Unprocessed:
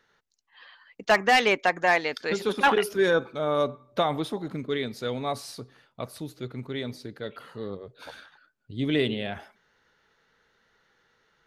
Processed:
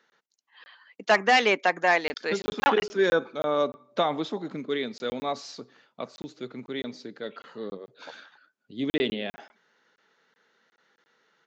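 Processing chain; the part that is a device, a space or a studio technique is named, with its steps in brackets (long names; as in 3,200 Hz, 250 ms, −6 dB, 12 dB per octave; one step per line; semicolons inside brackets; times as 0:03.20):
call with lost packets (high-pass filter 180 Hz 24 dB per octave; downsampling to 16,000 Hz; dropped packets of 20 ms random)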